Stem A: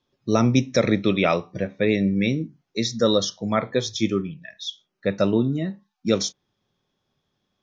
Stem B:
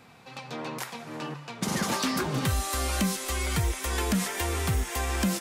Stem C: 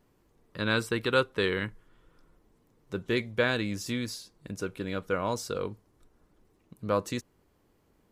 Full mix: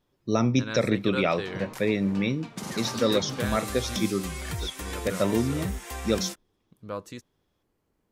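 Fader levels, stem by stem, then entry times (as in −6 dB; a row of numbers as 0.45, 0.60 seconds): −4.5, −6.5, −7.5 decibels; 0.00, 0.95, 0.00 seconds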